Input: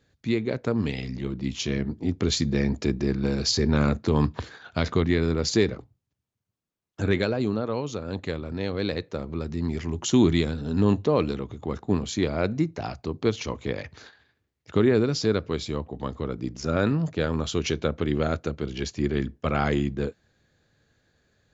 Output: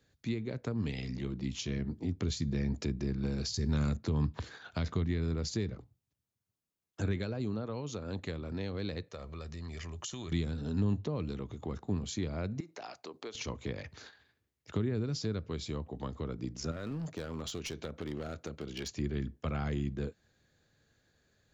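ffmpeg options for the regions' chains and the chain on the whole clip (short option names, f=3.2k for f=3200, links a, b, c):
-filter_complex "[0:a]asettb=1/sr,asplit=3[a][b][c];[a]atrim=end=3.544[d];[b]atrim=start=3.54:end=3.97,asetpts=PTS-STARTPTS,afade=t=in:d=0.004:c=qsin,afade=t=out:st=0.426:d=0.004:c=qsin,aemphasis=mode=production:type=75kf,bandreject=f=2.3k:w=23[e];[c]atrim=start=3.966[f];[d][e]acrossfade=d=0.004:c1=hsin:c2=qsin[g];[g][f]acrossfade=d=0.004:c1=qsin:c2=hsin,asettb=1/sr,asplit=3[h][i][j];[h]atrim=end=9.084[k];[i]atrim=start=9.08:end=10.32,asetpts=PTS-STARTPTS,afade=t=in:d=0.004:c=qsin,afade=t=out:st=1.236:d=0.004:c=qsin,equalizer=f=240:t=o:w=2.5:g=-9,aecho=1:1:1.7:0.35,atrim=end_sample=54684,acompressor=threshold=-33dB:ratio=4:attack=3.2:release=140:knee=1:detection=peak[l];[j]atrim=start=10.316[m];[k][l]acrossfade=d=0.004:c1=hsin:c2=qsin[n];[n][m]acrossfade=d=0.004:c1=qsin:c2=hsin,asettb=1/sr,asplit=3[o][p][q];[o]atrim=end=12.604[r];[p]atrim=start=12.6:end=13.35,asetpts=PTS-STARTPTS,afade=t=in:d=0.004:c=qsin,afade=t=out:st=0.746:d=0.004:c=qsin,highpass=440,acompressor=threshold=-36dB:ratio=3:attack=3.2:release=140:knee=1:detection=peak[s];[q]atrim=start=13.346[t];[r][s]acrossfade=d=0.004:c1=hsin:c2=qsin[u];[u][t]acrossfade=d=0.004:c1=qsin:c2=hsin,asettb=1/sr,asplit=3[v][w][x];[v]atrim=end=16.714[y];[w]atrim=start=16.71:end=18.89,asetpts=PTS-STARTPTS,afade=t=in:d=0.004:c=qsin,afade=t=out:st=2.176:d=0.004:c=qsin,lowshelf=f=150:g=-7.5,acompressor=threshold=-29dB:ratio=2:attack=3.2:release=140:knee=1:detection=peak,aeval=exprs='clip(val(0),-1,0.0355)':c=same[z];[x]atrim=start=18.886[aa];[y][z]acrossfade=d=0.004:c1=hsin:c2=qsin[ab];[ab][aa]acrossfade=d=0.004:c1=qsin:c2=hsin,highshelf=f=5.7k:g=6,acrossover=split=190[ac][ad];[ad]acompressor=threshold=-32dB:ratio=6[ae];[ac][ae]amix=inputs=2:normalize=0,volume=-5dB"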